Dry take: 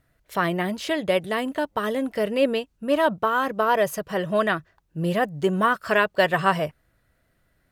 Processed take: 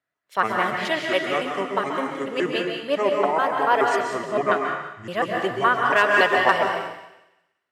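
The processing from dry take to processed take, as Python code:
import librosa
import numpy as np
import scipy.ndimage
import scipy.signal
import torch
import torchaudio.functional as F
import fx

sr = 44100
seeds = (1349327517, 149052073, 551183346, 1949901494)

p1 = fx.pitch_trill(x, sr, semitones=-7.5, every_ms=141)
p2 = fx.high_shelf(p1, sr, hz=5800.0, db=-7.5)
p3 = fx.rider(p2, sr, range_db=3, speed_s=0.5)
p4 = p2 + F.gain(torch.from_numpy(p3), -3.0).numpy()
p5 = fx.weighting(p4, sr, curve='A')
p6 = np.clip(10.0 ** (5.0 / 20.0) * p5, -1.0, 1.0) / 10.0 ** (5.0 / 20.0)
p7 = p6 + fx.echo_wet_highpass(p6, sr, ms=181, feedback_pct=43, hz=2100.0, wet_db=-9, dry=0)
p8 = fx.rev_plate(p7, sr, seeds[0], rt60_s=1.1, hf_ratio=0.9, predelay_ms=120, drr_db=0.5)
p9 = fx.band_widen(p8, sr, depth_pct=40)
y = F.gain(torch.from_numpy(p9), -2.5).numpy()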